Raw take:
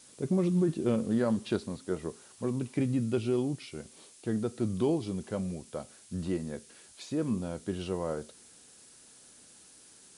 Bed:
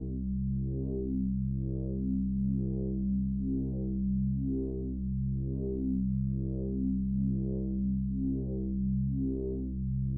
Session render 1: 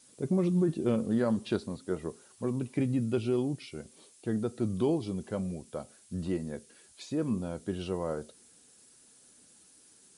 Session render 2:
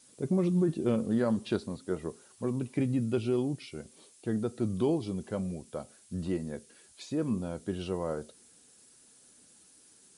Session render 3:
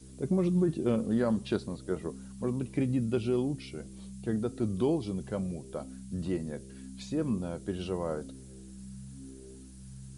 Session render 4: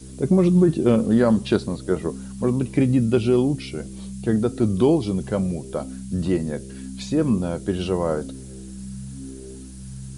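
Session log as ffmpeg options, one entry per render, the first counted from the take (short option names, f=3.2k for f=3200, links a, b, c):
-af "afftdn=nr=6:nf=-56"
-af anull
-filter_complex "[1:a]volume=-15dB[a];[0:a][a]amix=inputs=2:normalize=0"
-af "volume=10.5dB"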